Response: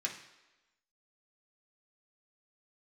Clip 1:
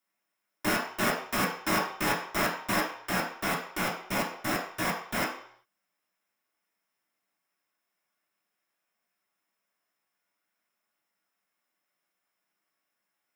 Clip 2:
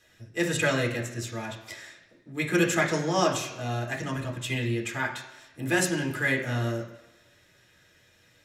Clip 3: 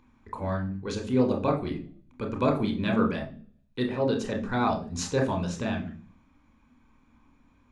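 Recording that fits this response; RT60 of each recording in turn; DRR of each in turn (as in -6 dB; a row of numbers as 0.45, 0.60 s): 2; 0.60, 1.1, 0.40 s; -5.5, -2.0, 2.0 dB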